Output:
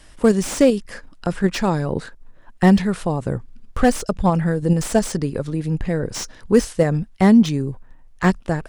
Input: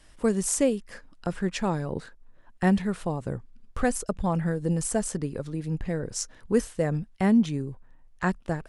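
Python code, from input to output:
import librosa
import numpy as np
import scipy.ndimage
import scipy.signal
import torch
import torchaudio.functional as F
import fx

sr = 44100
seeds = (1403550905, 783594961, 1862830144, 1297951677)

p1 = fx.dynamic_eq(x, sr, hz=5100.0, q=1.7, threshold_db=-51.0, ratio=4.0, max_db=7)
p2 = fx.level_steps(p1, sr, step_db=12)
p3 = p1 + (p2 * 10.0 ** (-1.0 / 20.0))
p4 = fx.slew_limit(p3, sr, full_power_hz=150.0)
y = p4 * 10.0 ** (5.0 / 20.0)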